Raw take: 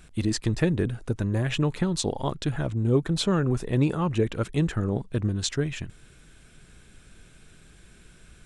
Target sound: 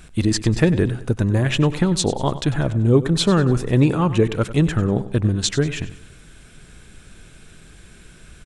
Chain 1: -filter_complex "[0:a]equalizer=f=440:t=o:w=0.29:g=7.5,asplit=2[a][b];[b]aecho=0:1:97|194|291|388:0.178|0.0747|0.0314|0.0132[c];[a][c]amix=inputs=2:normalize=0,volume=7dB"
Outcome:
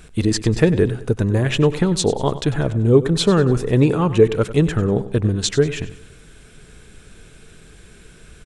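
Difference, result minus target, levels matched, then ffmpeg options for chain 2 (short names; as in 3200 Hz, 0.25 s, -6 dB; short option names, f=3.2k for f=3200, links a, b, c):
500 Hz band +3.5 dB
-filter_complex "[0:a]asplit=2[a][b];[b]aecho=0:1:97|194|291|388:0.178|0.0747|0.0314|0.0132[c];[a][c]amix=inputs=2:normalize=0,volume=7dB"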